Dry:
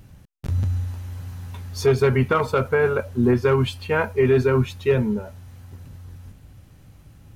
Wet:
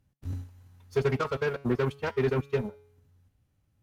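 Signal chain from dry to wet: Chebyshev shaper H 7 -19 dB, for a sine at -8.5 dBFS; feedback comb 140 Hz, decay 1.3 s, mix 50%; time stretch by phase-locked vocoder 0.52×; trim -2.5 dB

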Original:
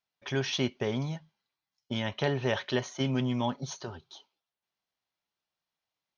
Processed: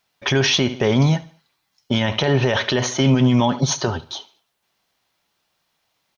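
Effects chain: feedback delay 72 ms, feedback 37%, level -20 dB; loudness maximiser +25.5 dB; trim -7 dB

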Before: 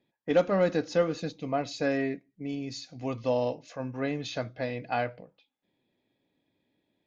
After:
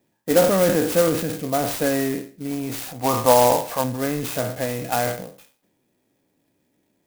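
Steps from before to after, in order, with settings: spectral sustain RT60 0.39 s; 2.51–3.84 s: peaking EQ 940 Hz +15 dB 1 oct; transient shaper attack +1 dB, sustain +7 dB; sampling jitter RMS 0.074 ms; trim +5.5 dB

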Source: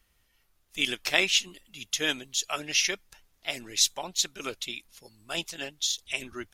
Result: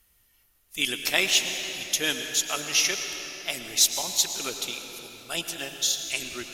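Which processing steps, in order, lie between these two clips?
peaking EQ 13 kHz +12 dB 1.2 oct; Chebyshev shaper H 5 -27 dB, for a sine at -4.5 dBFS; reverberation RT60 4.1 s, pre-delay 96 ms, DRR 5.5 dB; trim -1.5 dB

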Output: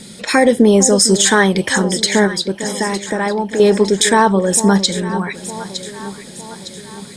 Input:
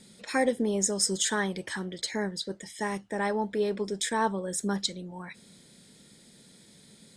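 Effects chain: 2.27–3.60 s: compression 3:1, threshold -36 dBFS, peak gain reduction 9 dB; on a send: echo whose repeats swap between lows and highs 454 ms, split 910 Hz, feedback 70%, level -12 dB; on the sum: loudness maximiser +19 dB; trim -1 dB

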